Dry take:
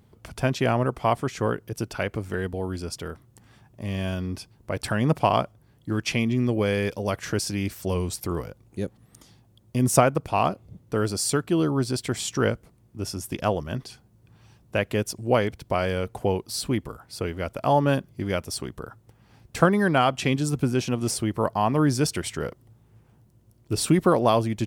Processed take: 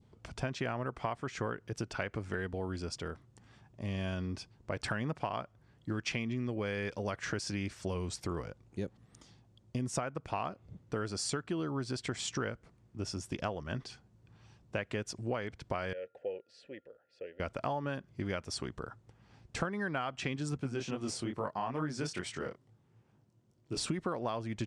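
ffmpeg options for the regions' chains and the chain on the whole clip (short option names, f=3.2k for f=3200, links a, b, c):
-filter_complex "[0:a]asettb=1/sr,asplit=3[a][b][c];[a]atrim=end=15.934[d];[b]atrim=start=15.93:end=17.4,asetpts=PTS-STARTPTS,afade=t=in:d=0.004:c=qsin,afade=t=out:st=1.466:d=0.004:c=qsin,aeval=exprs='val(0)+0.00178*sin(2*PI*1400*n/s)':c=same,asplit=3[e][f][g];[e]bandpass=f=530:t=q:w=8,volume=0dB[h];[f]bandpass=f=1.84k:t=q:w=8,volume=-6dB[i];[g]bandpass=f=2.48k:t=q:w=8,volume=-9dB[j];[h][i][j]amix=inputs=3:normalize=0[k];[c]atrim=start=17.396[l];[d][k]acrossfade=d=0.004:c1=hsin:c2=qsin[m];[m][l]acrossfade=d=0.004:c1=qsin:c2=hsin,asettb=1/sr,asplit=3[n][o][p];[n]atrim=end=20.574[q];[o]atrim=start=20.57:end=23.77,asetpts=PTS-STARTPTS,afade=t=in:d=0.004:c=qsin,afade=t=out:st=3.196:d=0.004:c=qsin,highpass=110,flanger=delay=19.5:depth=6.4:speed=2.3[r];[p]atrim=start=23.766[s];[q][r]acrossfade=d=0.004:c1=hsin:c2=qsin[t];[t][s]acrossfade=d=0.004:c1=qsin:c2=hsin,lowpass=f=7.9k:w=0.5412,lowpass=f=7.9k:w=1.3066,adynamicequalizer=threshold=0.0126:dfrequency=1600:dqfactor=1.1:tfrequency=1600:tqfactor=1.1:attack=5:release=100:ratio=0.375:range=3:mode=boostabove:tftype=bell,acompressor=threshold=-26dB:ratio=10,volume=-5.5dB"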